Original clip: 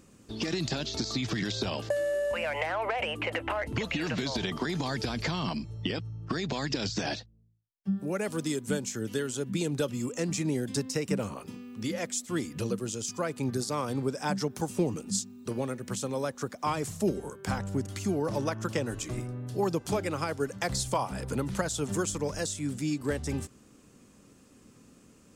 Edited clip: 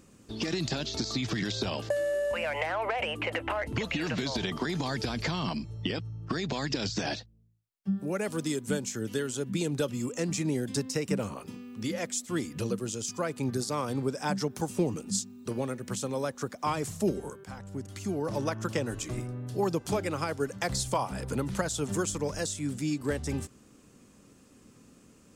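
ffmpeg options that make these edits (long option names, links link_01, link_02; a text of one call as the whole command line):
ffmpeg -i in.wav -filter_complex "[0:a]asplit=2[link_01][link_02];[link_01]atrim=end=17.44,asetpts=PTS-STARTPTS,afade=type=out:start_time=17.436:duration=0.004:curve=hsin:silence=0.199526[link_03];[link_02]atrim=start=17.44,asetpts=PTS-STARTPTS,afade=type=in:duration=1.05:silence=0.199526[link_04];[link_03][link_04]concat=n=2:v=0:a=1" out.wav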